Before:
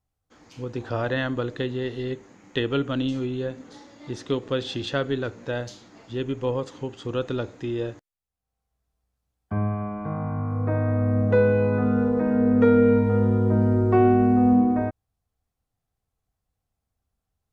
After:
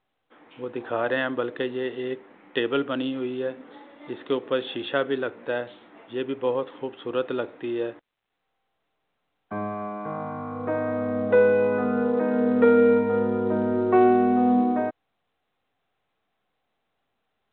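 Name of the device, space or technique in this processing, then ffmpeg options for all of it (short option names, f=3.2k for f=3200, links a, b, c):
telephone: -af "highpass=310,lowpass=3.3k,volume=2.5dB" -ar 8000 -c:a pcm_mulaw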